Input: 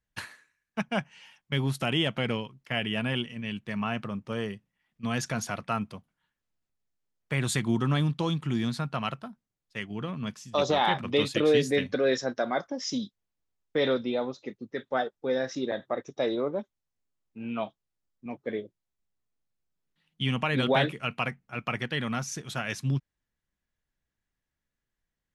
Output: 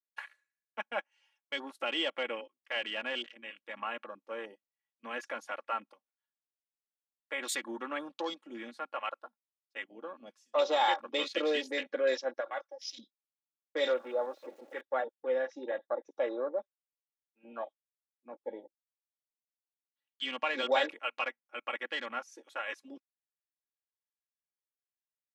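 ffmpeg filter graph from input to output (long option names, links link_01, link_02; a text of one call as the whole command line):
ffmpeg -i in.wav -filter_complex "[0:a]asettb=1/sr,asplit=3[link_01][link_02][link_03];[link_01]atrim=end=12.404[link_04];[link_02]atrim=start=12.4:end=12.99,asetpts=PTS-STARTPTS,afade=type=in:duration=0.004:curve=qsin,afade=type=out:start_time=0.586:duration=0.004:curve=qsin,aeval=exprs='if(lt(val(0),0),0.708*val(0),val(0))':channel_layout=same,highpass=frequency=920:poles=1[link_05];[link_03]atrim=start=12.986[link_06];[link_04][link_05]acrossfade=duration=0.004:curve1=hsin:curve2=qsin[link_07];[link_07][link_06]acrossfade=duration=0.004:curve1=qsin:curve2=hsin,asettb=1/sr,asplit=3[link_08][link_09][link_10];[link_08]atrim=end=13.884[link_11];[link_09]atrim=start=13.88:end=14.81,asetpts=PTS-STARTPTS,afade=type=in:duration=0.004:curve=qsin,afade=type=out:start_time=0.926:duration=0.004:curve=qsin,aeval=exprs='val(0)+0.5*0.02*sgn(val(0))':channel_layout=same,highpass=330,acrossover=split=3000[link_12][link_13];[link_13]acompressor=threshold=-48dB:ratio=4:attack=1:release=60[link_14];[link_12][link_14]amix=inputs=2:normalize=0[link_15];[link_10]atrim=start=14.806[link_16];[link_11][link_15]acrossfade=duration=0.004:curve1=hsin:curve2=qsin[link_17];[link_17][link_16]acrossfade=duration=0.004:curve1=qsin:curve2=hsin,highpass=frequency=390:width=0.5412,highpass=frequency=390:width=1.3066,afwtdn=0.0112,aecho=1:1:3.6:0.73,volume=-5dB" out.wav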